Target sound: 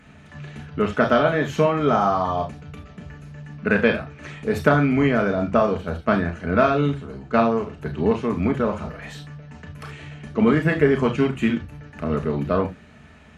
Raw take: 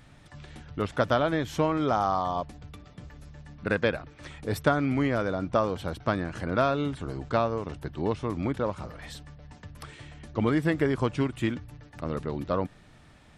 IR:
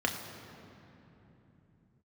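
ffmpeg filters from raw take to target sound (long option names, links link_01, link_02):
-filter_complex "[0:a]asettb=1/sr,asplit=3[link_01][link_02][link_03];[link_01]atrim=end=5.664[link_04];[link_02]atrim=start=5.66:end=7.77,asetpts=PTS-STARTPTS,afade=type=in:duration=0.004:curve=qsin,afade=type=out:start_time=2.106:duration=0.004:curve=qsin,agate=range=-8dB:threshold=-31dB:ratio=16:detection=peak[link_05];[link_03]atrim=start=7.766[link_06];[link_04][link_05]acrossfade=duration=0.004:curve1=hsin:curve2=qsin[link_07];[link_07][link_06]acrossfade=duration=0.004:curve1=qsin:curve2=hsin[link_08];[1:a]atrim=start_sample=2205,atrim=end_sample=3528,asetrate=38808,aresample=44100[link_09];[link_08][link_09]afir=irnorm=-1:irlink=0,volume=-1.5dB"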